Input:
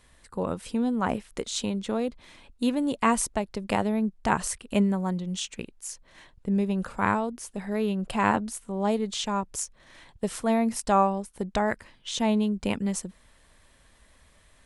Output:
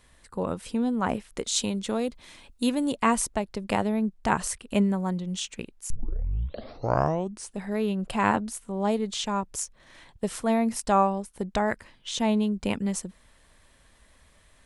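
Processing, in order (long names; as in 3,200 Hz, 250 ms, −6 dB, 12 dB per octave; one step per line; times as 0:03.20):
0:01.47–0:02.92: high-shelf EQ 4,100 Hz +8 dB
0:05.90: tape start 1.64 s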